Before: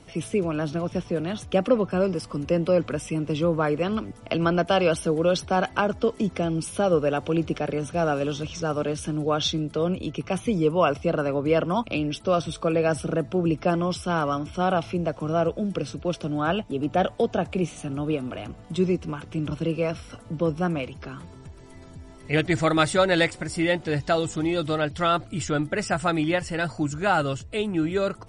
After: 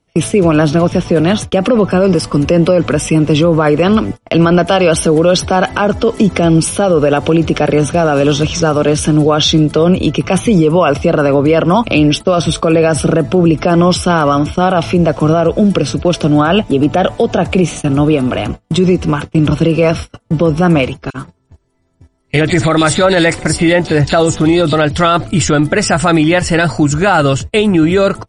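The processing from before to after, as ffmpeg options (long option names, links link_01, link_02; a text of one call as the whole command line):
ffmpeg -i in.wav -filter_complex "[0:a]asettb=1/sr,asplit=3[link_01][link_02][link_03];[link_01]atrim=end=21.104[link_04];[link_02]atrim=start=21.1:end=24.73,asetpts=PTS-STARTPTS,afade=type=in:duration=0.004:curve=qsin,afade=type=out:start_time=3.626:duration=0.004:curve=qsin,acrossover=split=2900[link_05][link_06];[link_05]adelay=40[link_07];[link_07][link_06]amix=inputs=2:normalize=0,atrim=end_sample=160083[link_08];[link_03]atrim=start=24.726[link_09];[link_04][link_08]acrossfade=duration=0.004:curve1=hsin:curve2=qsin[link_10];[link_10][link_09]acrossfade=duration=0.004:curve1=qsin:curve2=hsin,agate=range=-34dB:threshold=-37dB:ratio=16:detection=peak,alimiter=level_in=19dB:limit=-1dB:release=50:level=0:latency=1,volume=-1dB" out.wav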